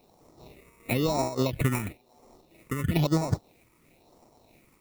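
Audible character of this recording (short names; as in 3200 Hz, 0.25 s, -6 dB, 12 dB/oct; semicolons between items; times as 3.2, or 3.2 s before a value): aliases and images of a low sample rate 1600 Hz, jitter 0%; phasing stages 4, 1 Hz, lowest notch 680–3000 Hz; a quantiser's noise floor 12-bit, dither triangular; noise-modulated level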